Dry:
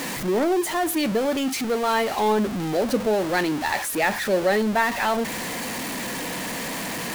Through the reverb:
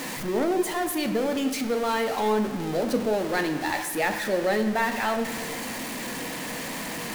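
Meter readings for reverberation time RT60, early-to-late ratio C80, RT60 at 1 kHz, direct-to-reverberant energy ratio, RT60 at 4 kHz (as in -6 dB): 1.5 s, 10.5 dB, 1.4 s, 7.0 dB, 1.1 s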